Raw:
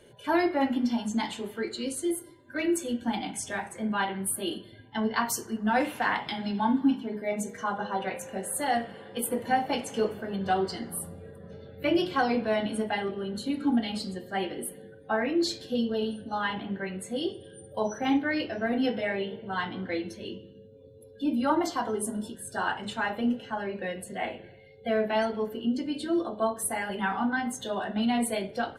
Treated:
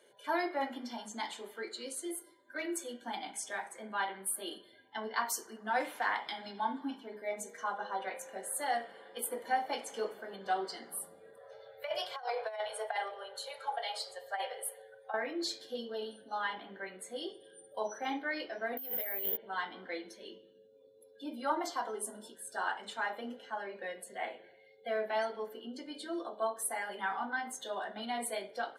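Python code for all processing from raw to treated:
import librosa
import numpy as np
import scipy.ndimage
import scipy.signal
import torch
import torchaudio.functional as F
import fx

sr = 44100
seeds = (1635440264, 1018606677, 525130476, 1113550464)

y = fx.chain(x, sr, fx.ellip_bandstop(low_hz=130.0, high_hz=470.0, order=3, stop_db=40),
    fx.peak_eq(hz=780.0, db=6.0, octaves=1.0),
    fx.over_compress(threshold_db=-28.0, ratio=-0.5), at=(11.37, 15.14))
y = fx.chain(y, sr, fx.lowpass(hz=8200.0, slope=12),
    fx.over_compress(threshold_db=-36.0, ratio=-1.0),
    fx.resample_bad(factor=3, down='filtered', up='zero_stuff'), at=(18.77, 19.37))
y = scipy.signal.sosfilt(scipy.signal.butter(2, 490.0, 'highpass', fs=sr, output='sos'), y)
y = fx.notch(y, sr, hz=2700.0, q=6.4)
y = F.gain(torch.from_numpy(y), -5.0).numpy()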